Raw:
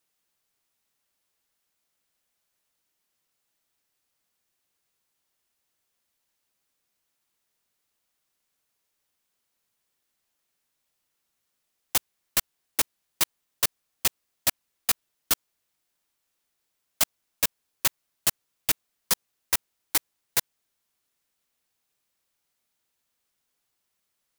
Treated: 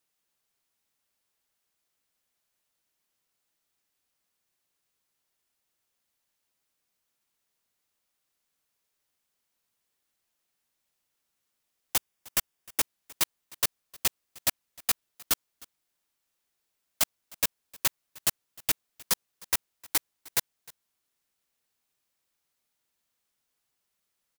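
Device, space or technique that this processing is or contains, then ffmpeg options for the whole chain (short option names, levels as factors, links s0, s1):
ducked delay: -filter_complex "[0:a]asettb=1/sr,asplit=3[s0][s1][s2];[s0]atrim=end=11.974[s3];[s1]atrim=start=11.97:end=12.81,asetpts=PTS-STARTPTS,afade=t=in:d=0.004:c=qsin,afade=t=out:st=0.836:d=0.004:c=qsin,bandreject=f=4100:w=9.6[s4];[s2]atrim=start=12.806[s5];[s3][s4]acrossfade=d=0.004:c1=hsin:c2=qsin[s6];[s6][s5]acrossfade=d=0.004:c1=qsin:c2=hsin,asplit=3[s7][s8][s9];[s8]adelay=308,volume=0.355[s10];[s9]apad=whole_len=1088847[s11];[s10][s11]sidechaincompress=threshold=0.0178:ratio=8:attack=6:release=916[s12];[s7][s12]amix=inputs=2:normalize=0,volume=0.75"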